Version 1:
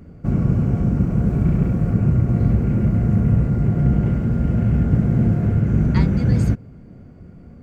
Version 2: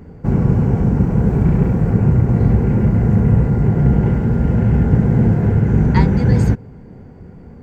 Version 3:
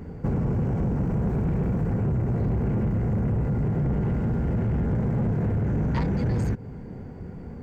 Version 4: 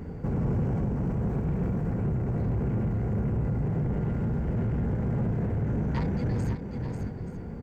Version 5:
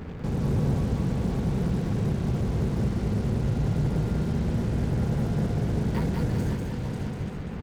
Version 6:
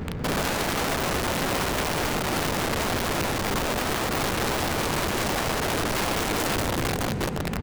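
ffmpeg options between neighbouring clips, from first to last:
-af "superequalizer=7b=1.78:9b=2.51:11b=1.58:16b=0.631,volume=3.5dB"
-af "asoftclip=type=tanh:threshold=-14dB,acompressor=threshold=-23dB:ratio=5"
-af "aecho=1:1:541|879:0.335|0.126,alimiter=limit=-22dB:level=0:latency=1:release=351"
-af "acrusher=bits=6:mix=0:aa=0.5,aecho=1:1:194|388|582|776|970:0.668|0.274|0.112|0.0461|0.0189"
-af "aeval=exprs='(mod(21.1*val(0)+1,2)-1)/21.1':c=same,volume=5.5dB"

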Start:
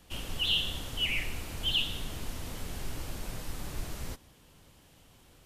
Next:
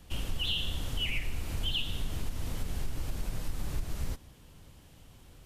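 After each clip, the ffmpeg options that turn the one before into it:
-af "lowshelf=f=170:g=8.5,acompressor=threshold=-27dB:ratio=6"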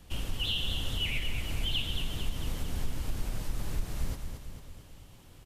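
-af "aecho=1:1:224|448|672|896|1120|1344|1568:0.447|0.25|0.14|0.0784|0.0439|0.0246|0.0138"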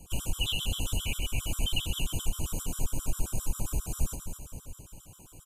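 -af "asuperstop=centerf=1900:order=8:qfactor=2.4,highshelf=f=5.9k:t=q:w=3:g=6.5,afftfilt=real='re*gt(sin(2*PI*7.5*pts/sr)*(1-2*mod(floor(b*sr/1024/1000),2)),0)':imag='im*gt(sin(2*PI*7.5*pts/sr)*(1-2*mod(floor(b*sr/1024/1000),2)),0)':win_size=1024:overlap=0.75,volume=4.5dB"

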